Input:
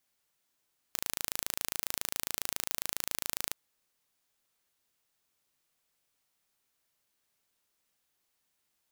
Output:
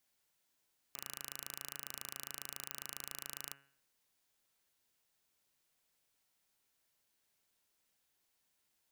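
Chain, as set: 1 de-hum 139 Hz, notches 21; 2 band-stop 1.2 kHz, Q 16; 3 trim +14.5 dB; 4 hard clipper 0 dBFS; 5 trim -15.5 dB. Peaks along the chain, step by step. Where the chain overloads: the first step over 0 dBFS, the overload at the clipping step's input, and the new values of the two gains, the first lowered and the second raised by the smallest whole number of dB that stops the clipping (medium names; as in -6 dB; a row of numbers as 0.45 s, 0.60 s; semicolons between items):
-5.0 dBFS, -5.0 dBFS, +9.5 dBFS, 0.0 dBFS, -15.5 dBFS; step 3, 9.5 dB; step 3 +4.5 dB, step 5 -5.5 dB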